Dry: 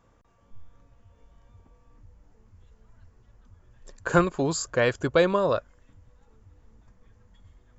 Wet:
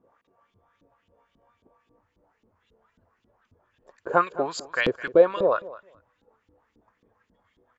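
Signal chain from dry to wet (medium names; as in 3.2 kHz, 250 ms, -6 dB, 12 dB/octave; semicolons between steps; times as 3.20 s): LFO band-pass saw up 3.7 Hz 270–3800 Hz; on a send: feedback delay 211 ms, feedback 15%, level -18 dB; on the sum: trim +7.5 dB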